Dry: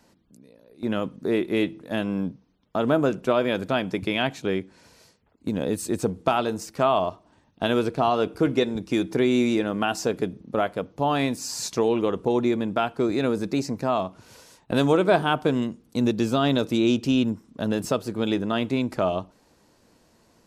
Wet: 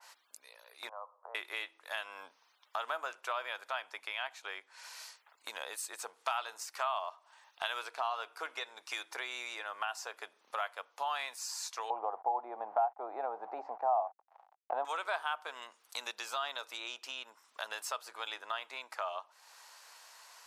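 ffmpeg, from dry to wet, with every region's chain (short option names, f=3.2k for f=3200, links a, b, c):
-filter_complex "[0:a]asettb=1/sr,asplit=3[a][b][c];[a]atrim=end=0.894[d];[b]atrim=start=0.89:end=1.35,asetpts=PTS-STARTPTS,afade=t=in:d=0.004:c=qsin,afade=t=out:st=0.456:d=0.004:c=qsin,bandreject=f=890:w=16,acompressor=threshold=-28dB:ratio=4:attack=3.2:release=140:knee=1:detection=peak,asuperpass=centerf=750:order=8:qfactor=1.2[e];[c]atrim=start=1.346[f];[d][e]acrossfade=d=0.004:c1=hsin:c2=qsin[g];[g][f]acrossfade=d=0.004:c1=qsin:c2=hsin,asettb=1/sr,asplit=3[h][i][j];[h]atrim=end=11.904[k];[i]atrim=start=11.9:end=14.85,asetpts=PTS-STARTPTS,afade=t=in:d=0.004:c=qsin,afade=t=out:st=2.946:d=0.004:c=qsin,aeval=exprs='val(0)*gte(abs(val(0)),0.00841)':c=same,lowpass=f=770:t=q:w=7.6,lowshelf=f=380:g=12[l];[j]atrim=start=14.846[m];[k][l]acrossfade=d=0.004:c1=hsin:c2=qsin[n];[n][m]acrossfade=d=0.004:c1=qsin:c2=hsin,highpass=f=900:w=0.5412,highpass=f=900:w=1.3066,acompressor=threshold=-55dB:ratio=2,adynamicequalizer=threshold=0.00112:dfrequency=1800:dqfactor=0.7:tfrequency=1800:tqfactor=0.7:attack=5:release=100:ratio=0.375:range=3.5:mode=cutabove:tftype=highshelf,volume=9.5dB"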